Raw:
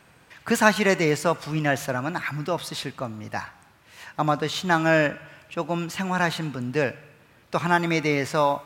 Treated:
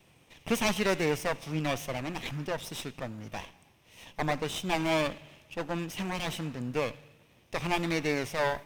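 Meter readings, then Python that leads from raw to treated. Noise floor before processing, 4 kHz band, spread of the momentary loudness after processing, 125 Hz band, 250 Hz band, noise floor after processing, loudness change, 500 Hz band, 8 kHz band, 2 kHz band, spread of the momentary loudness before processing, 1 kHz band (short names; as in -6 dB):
-56 dBFS, -4.0 dB, 14 LU, -7.5 dB, -7.0 dB, -62 dBFS, -7.5 dB, -7.0 dB, -5.0 dB, -9.5 dB, 14 LU, -9.5 dB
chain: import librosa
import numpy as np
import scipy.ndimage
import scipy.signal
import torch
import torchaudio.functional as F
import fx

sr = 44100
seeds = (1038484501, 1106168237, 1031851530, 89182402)

y = fx.lower_of_two(x, sr, delay_ms=0.33)
y = y * 10.0 ** (-5.0 / 20.0)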